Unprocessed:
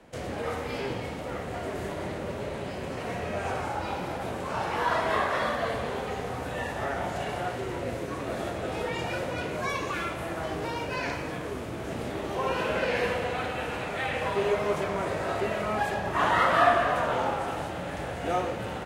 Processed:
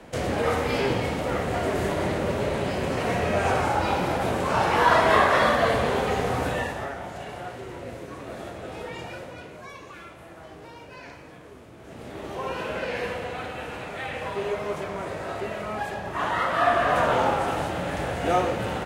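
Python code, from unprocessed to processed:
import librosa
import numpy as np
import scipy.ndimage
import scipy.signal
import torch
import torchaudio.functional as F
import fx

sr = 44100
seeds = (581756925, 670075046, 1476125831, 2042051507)

y = fx.gain(x, sr, db=fx.line((6.47, 8.0), (6.98, -4.5), (8.99, -4.5), (9.68, -11.5), (11.76, -11.5), (12.25, -2.5), (16.55, -2.5), (16.99, 5.5)))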